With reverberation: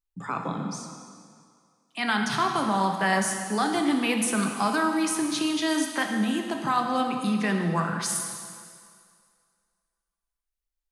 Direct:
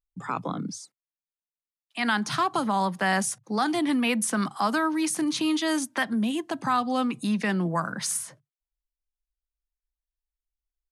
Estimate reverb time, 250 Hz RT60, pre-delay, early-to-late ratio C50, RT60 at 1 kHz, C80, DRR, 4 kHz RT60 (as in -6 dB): 2.1 s, 2.0 s, 3 ms, 4.5 dB, 2.2 s, 5.5 dB, 2.5 dB, 2.0 s